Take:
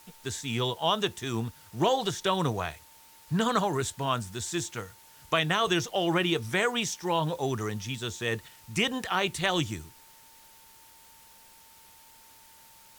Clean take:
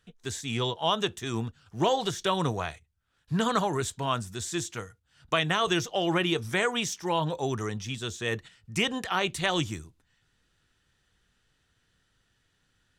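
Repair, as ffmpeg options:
-af "bandreject=f=900:w=30,afftdn=nr=17:nf=-55"

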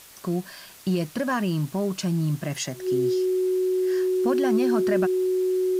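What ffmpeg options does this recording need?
-af "bandreject=f=370:w=30,afwtdn=0.0045"

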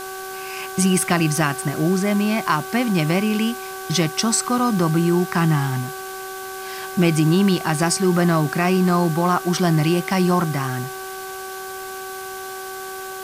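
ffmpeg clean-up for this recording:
-af "bandreject=f=380.9:t=h:w=4,bandreject=f=761.8:t=h:w=4,bandreject=f=1.1427k:t=h:w=4,bandreject=f=1.5236k:t=h:w=4,bandreject=f=1.6k:w=30,afwtdn=0.014"

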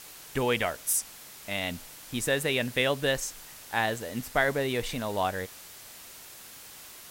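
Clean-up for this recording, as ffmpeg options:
-af "adeclick=t=4,afwtdn=0.005"

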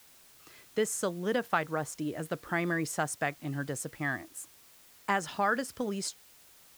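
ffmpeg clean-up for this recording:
-af "adeclick=t=4,afftdn=nr=19:nf=-58"

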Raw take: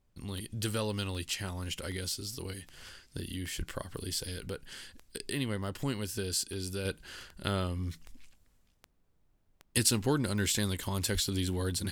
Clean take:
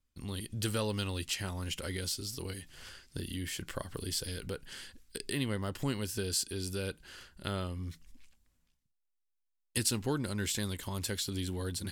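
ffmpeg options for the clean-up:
-filter_complex "[0:a]adeclick=t=4,asplit=3[a][b][c];[a]afade=t=out:st=3.57:d=0.02[d];[b]highpass=f=140:w=0.5412,highpass=f=140:w=1.3066,afade=t=in:st=3.57:d=0.02,afade=t=out:st=3.69:d=0.02[e];[c]afade=t=in:st=3.69:d=0.02[f];[d][e][f]amix=inputs=3:normalize=0,asplit=3[g][h][i];[g]afade=t=out:st=11.13:d=0.02[j];[h]highpass=f=140:w=0.5412,highpass=f=140:w=1.3066,afade=t=in:st=11.13:d=0.02,afade=t=out:st=11.25:d=0.02[k];[i]afade=t=in:st=11.25:d=0.02[l];[j][k][l]amix=inputs=3:normalize=0,agate=range=-21dB:threshold=-58dB,asetnsamples=n=441:p=0,asendcmd='6.85 volume volume -4dB',volume=0dB"

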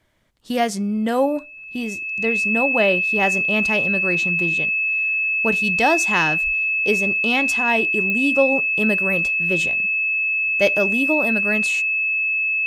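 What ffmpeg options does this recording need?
-af "adeclick=t=4,bandreject=f=2.6k:w=30"

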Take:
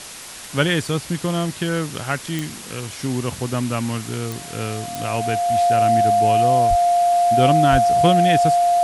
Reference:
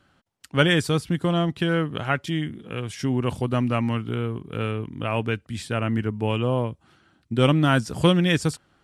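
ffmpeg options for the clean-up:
-filter_complex "[0:a]adeclick=t=4,bandreject=f=700:w=30,asplit=3[a][b][c];[a]afade=t=out:st=6.69:d=0.02[d];[b]highpass=f=140:w=0.5412,highpass=f=140:w=1.3066,afade=t=in:st=6.69:d=0.02,afade=t=out:st=6.81:d=0.02[e];[c]afade=t=in:st=6.81:d=0.02[f];[d][e][f]amix=inputs=3:normalize=0,asplit=3[g][h][i];[g]afade=t=out:st=7.71:d=0.02[j];[h]highpass=f=140:w=0.5412,highpass=f=140:w=1.3066,afade=t=in:st=7.71:d=0.02,afade=t=out:st=7.83:d=0.02[k];[i]afade=t=in:st=7.83:d=0.02[l];[j][k][l]amix=inputs=3:normalize=0,afwtdn=0.02"

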